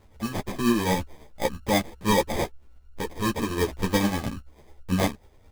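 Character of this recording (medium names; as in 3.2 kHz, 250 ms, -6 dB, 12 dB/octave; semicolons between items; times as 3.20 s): tremolo triangle 9.2 Hz, depth 55%; aliases and images of a low sample rate 1.4 kHz, jitter 0%; a shimmering, thickened sound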